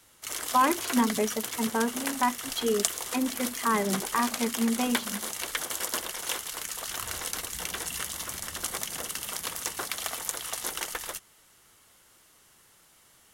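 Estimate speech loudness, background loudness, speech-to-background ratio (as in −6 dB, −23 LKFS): −29.0 LKFS, −32.5 LKFS, 3.5 dB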